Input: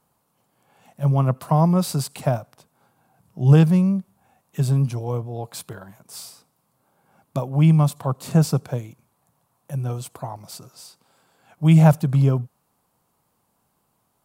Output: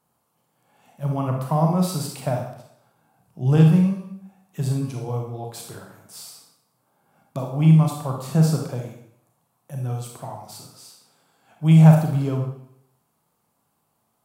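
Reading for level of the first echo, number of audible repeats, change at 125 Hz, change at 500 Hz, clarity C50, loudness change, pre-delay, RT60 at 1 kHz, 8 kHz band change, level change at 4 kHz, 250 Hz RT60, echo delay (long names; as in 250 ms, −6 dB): no echo audible, no echo audible, −0.5 dB, −1.5 dB, 3.5 dB, −0.5 dB, 29 ms, 0.70 s, −1.5 dB, −1.5 dB, 0.65 s, no echo audible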